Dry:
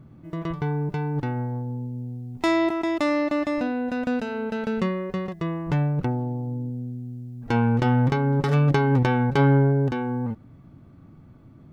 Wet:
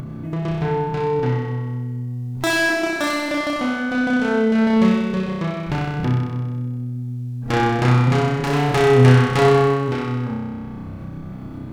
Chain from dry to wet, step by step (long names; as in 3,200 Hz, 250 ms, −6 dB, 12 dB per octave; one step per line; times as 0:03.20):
phase distortion by the signal itself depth 0.62 ms
flutter between parallel walls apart 5.4 metres, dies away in 1.3 s
upward compression, threshold −23 dBFS
level +2 dB